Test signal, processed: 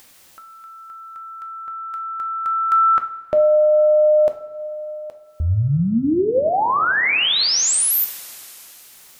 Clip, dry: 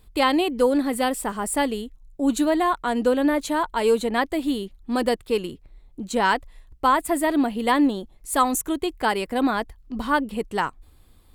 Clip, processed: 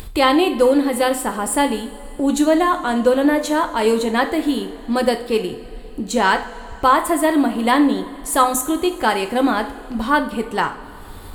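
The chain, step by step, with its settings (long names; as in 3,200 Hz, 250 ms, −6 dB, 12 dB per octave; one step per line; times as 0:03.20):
upward compression, threshold −26 dBFS
coupled-rooms reverb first 0.45 s, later 4 s, from −18 dB, DRR 6 dB
level +4 dB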